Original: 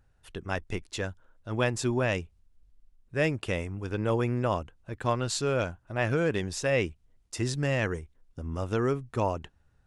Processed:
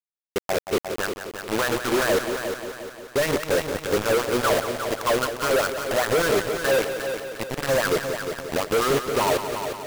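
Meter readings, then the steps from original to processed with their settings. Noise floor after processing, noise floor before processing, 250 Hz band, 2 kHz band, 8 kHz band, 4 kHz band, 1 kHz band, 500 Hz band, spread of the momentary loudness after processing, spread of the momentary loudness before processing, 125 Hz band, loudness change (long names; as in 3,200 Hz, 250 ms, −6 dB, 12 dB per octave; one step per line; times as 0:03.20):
below −85 dBFS, −66 dBFS, +3.0 dB, +7.5 dB, +9.0 dB, +10.0 dB, +9.0 dB, +8.0 dB, 8 LU, 12 LU, −5.0 dB, +6.0 dB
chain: parametric band 180 Hz +11 dB 2.9 octaves
mains-hum notches 60/120/180/240/300/360/420/480/540 Hz
LFO wah 5 Hz 450–1,400 Hz, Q 4.1
log-companded quantiser 2 bits
echo machine with several playback heads 177 ms, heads first and second, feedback 53%, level −10 dB
level +6.5 dB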